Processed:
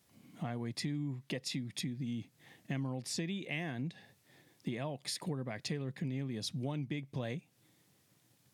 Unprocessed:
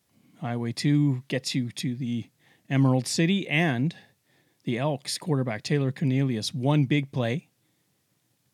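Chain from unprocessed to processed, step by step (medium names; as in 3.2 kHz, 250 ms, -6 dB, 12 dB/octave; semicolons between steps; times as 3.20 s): compression 6:1, threshold -37 dBFS, peak gain reduction 18.5 dB; trim +1 dB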